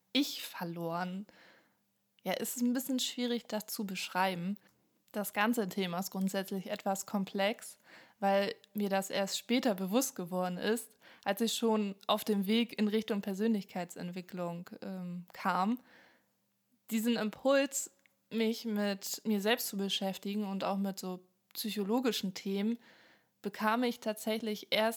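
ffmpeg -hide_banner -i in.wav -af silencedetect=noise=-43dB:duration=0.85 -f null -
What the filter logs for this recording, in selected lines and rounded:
silence_start: 1.29
silence_end: 2.26 | silence_duration: 0.96
silence_start: 15.77
silence_end: 16.89 | silence_duration: 1.12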